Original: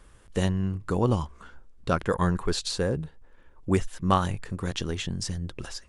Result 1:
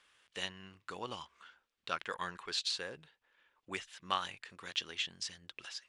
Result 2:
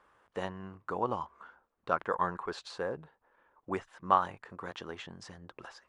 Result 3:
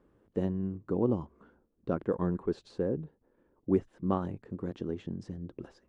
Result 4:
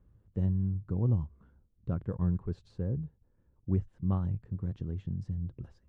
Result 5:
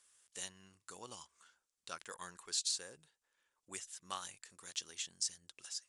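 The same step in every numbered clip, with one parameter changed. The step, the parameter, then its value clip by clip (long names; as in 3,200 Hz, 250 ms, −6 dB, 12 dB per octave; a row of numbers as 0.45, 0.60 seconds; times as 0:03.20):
resonant band-pass, frequency: 3,000, 1,000, 310, 110, 7,700 Hertz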